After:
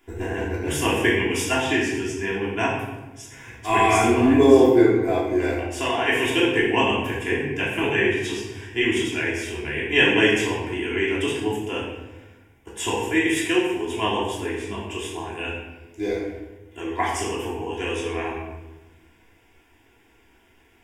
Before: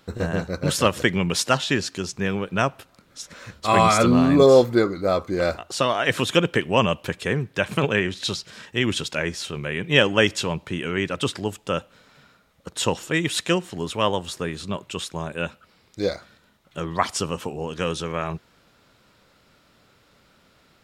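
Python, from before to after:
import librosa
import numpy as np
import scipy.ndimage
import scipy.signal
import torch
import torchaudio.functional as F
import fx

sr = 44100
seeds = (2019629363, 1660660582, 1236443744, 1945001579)

y = fx.peak_eq(x, sr, hz=3400.0, db=3.5, octaves=0.64)
y = fx.fixed_phaser(y, sr, hz=850.0, stages=8)
y = fx.room_shoebox(y, sr, seeds[0], volume_m3=520.0, walls='mixed', distance_m=3.1)
y = y * 10.0 ** (-4.0 / 20.0)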